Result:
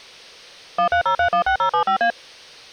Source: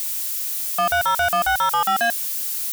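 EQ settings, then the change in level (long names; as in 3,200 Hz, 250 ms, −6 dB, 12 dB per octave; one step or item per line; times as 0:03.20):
Savitzky-Golay smoothing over 15 samples
high-frequency loss of the air 110 metres
parametric band 490 Hz +10.5 dB 0.68 octaves
0.0 dB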